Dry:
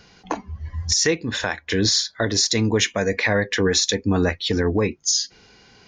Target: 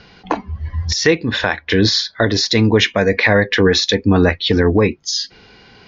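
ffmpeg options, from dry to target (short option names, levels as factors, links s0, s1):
-af "lowpass=f=4600:w=0.5412,lowpass=f=4600:w=1.3066,volume=2.24"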